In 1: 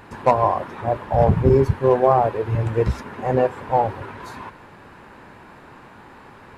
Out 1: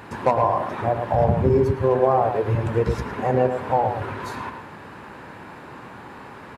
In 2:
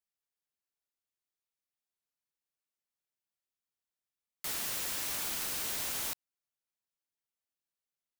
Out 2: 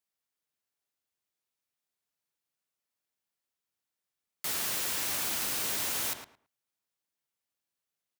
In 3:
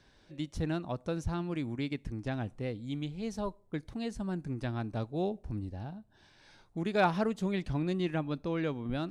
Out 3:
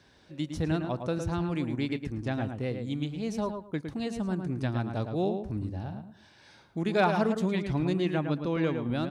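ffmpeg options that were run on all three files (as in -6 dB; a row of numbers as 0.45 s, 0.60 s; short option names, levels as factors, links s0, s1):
-filter_complex "[0:a]highpass=68,acompressor=threshold=0.0631:ratio=2,asplit=2[s0][s1];[s1]adelay=110,lowpass=f=2400:p=1,volume=0.501,asplit=2[s2][s3];[s3]adelay=110,lowpass=f=2400:p=1,volume=0.21,asplit=2[s4][s5];[s5]adelay=110,lowpass=f=2400:p=1,volume=0.21[s6];[s2][s4][s6]amix=inputs=3:normalize=0[s7];[s0][s7]amix=inputs=2:normalize=0,volume=1.5"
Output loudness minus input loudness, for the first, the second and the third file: -2.0 LU, +3.5 LU, +4.0 LU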